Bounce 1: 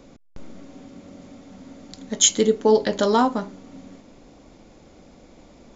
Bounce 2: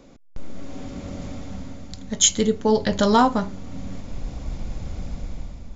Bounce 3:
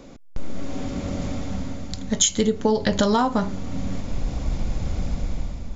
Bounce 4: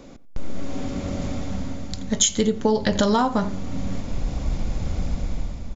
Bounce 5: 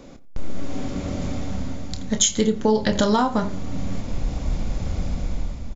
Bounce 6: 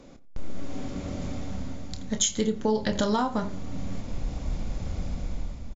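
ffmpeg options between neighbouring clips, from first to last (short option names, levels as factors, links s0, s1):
-af "dynaudnorm=f=140:g=9:m=3.55,asubboost=boost=12:cutoff=110,volume=0.841"
-af "acompressor=threshold=0.0891:ratio=12,volume=1.88"
-filter_complex "[0:a]asplit=2[s0][s1];[s1]adelay=88,lowpass=f=2500:p=1,volume=0.141,asplit=2[s2][s3];[s3]adelay=88,lowpass=f=2500:p=1,volume=0.22[s4];[s0][s2][s4]amix=inputs=3:normalize=0"
-filter_complex "[0:a]asplit=2[s0][s1];[s1]adelay=28,volume=0.282[s2];[s0][s2]amix=inputs=2:normalize=0"
-af "aresample=22050,aresample=44100,volume=0.501"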